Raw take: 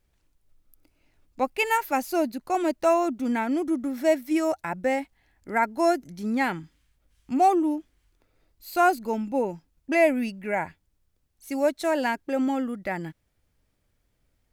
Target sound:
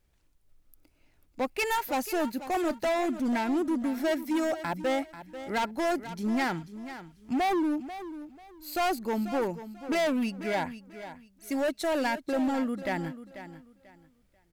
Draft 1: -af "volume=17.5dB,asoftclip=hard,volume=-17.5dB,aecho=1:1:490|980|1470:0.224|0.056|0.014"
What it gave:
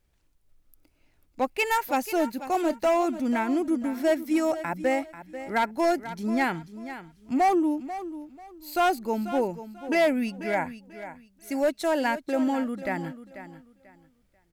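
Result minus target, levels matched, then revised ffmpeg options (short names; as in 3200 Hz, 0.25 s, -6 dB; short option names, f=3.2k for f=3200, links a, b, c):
overloaded stage: distortion -7 dB
-af "volume=24.5dB,asoftclip=hard,volume=-24.5dB,aecho=1:1:490|980|1470:0.224|0.056|0.014"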